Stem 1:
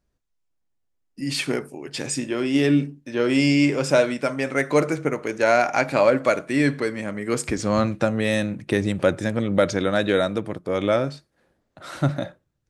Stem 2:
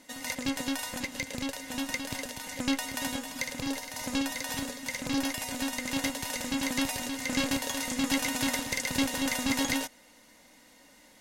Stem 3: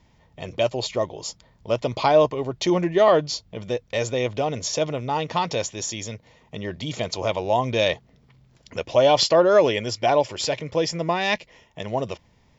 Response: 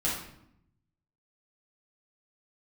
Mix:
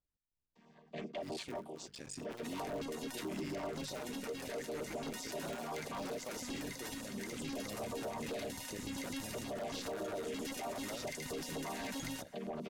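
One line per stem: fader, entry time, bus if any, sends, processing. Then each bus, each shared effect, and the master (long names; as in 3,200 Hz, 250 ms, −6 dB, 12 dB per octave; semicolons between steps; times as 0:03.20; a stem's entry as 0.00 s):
−17.0 dB, 0.00 s, no bus, no send, sub-harmonics by changed cycles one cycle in 3, muted
−13.5 dB, 2.35 s, bus A, no send, no processing
−2.0 dB, 0.55 s, bus A, no send, channel vocoder with a chord as carrier major triad, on D#3; Bessel high-pass filter 390 Hz, order 2; automatic ducking −9 dB, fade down 0.20 s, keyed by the first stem
bus A: 0.0 dB, automatic gain control gain up to 6 dB; brickwall limiter −23 dBFS, peak gain reduction 11.5 dB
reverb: not used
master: soft clipping −28.5 dBFS, distortion −14 dB; auto-filter notch saw down 7.7 Hz 340–2,800 Hz; brickwall limiter −34 dBFS, peak gain reduction 8.5 dB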